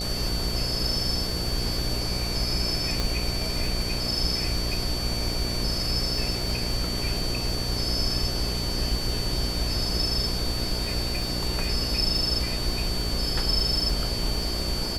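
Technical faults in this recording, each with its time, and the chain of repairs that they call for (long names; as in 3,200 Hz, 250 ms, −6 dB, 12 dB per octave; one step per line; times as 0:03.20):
mains buzz 60 Hz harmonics 12 −32 dBFS
surface crackle 40 per second −32 dBFS
whistle 4,500 Hz −31 dBFS
0:03.00: click −12 dBFS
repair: click removal
hum removal 60 Hz, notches 12
notch filter 4,500 Hz, Q 30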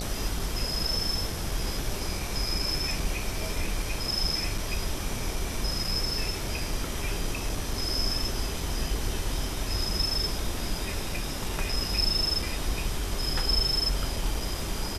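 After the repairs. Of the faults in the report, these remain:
none of them is left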